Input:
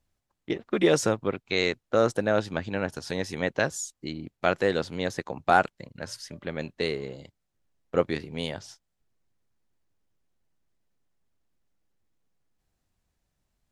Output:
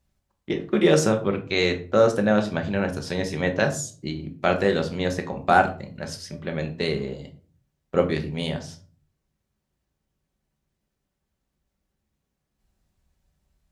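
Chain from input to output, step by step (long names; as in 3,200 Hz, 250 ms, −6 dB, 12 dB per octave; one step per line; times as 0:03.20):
high-pass filter 41 Hz
low-shelf EQ 82 Hz +10 dB
rectangular room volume 290 cubic metres, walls furnished, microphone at 1.1 metres
level +1.5 dB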